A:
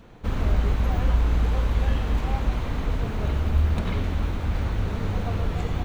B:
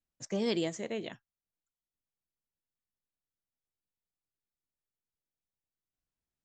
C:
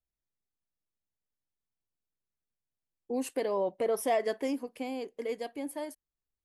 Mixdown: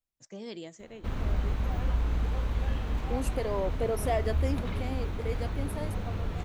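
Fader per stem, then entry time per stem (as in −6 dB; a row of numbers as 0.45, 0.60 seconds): −7.0, −10.0, −1.5 decibels; 0.80, 0.00, 0.00 seconds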